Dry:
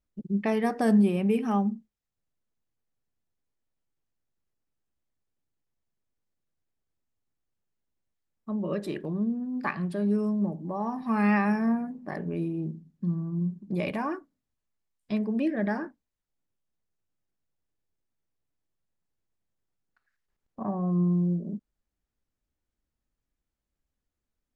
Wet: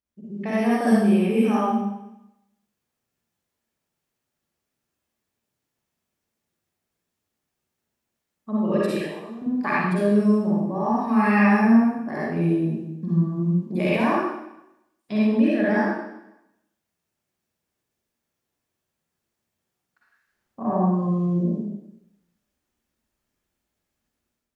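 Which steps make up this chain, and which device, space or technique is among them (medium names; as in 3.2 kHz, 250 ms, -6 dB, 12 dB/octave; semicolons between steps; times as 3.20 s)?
8.91–9.42 s: high-pass 740 Hz 12 dB/octave; far laptop microphone (reverberation RT60 0.85 s, pre-delay 45 ms, DRR -8 dB; high-pass 170 Hz 6 dB/octave; level rider gain up to 8 dB); trim -5.5 dB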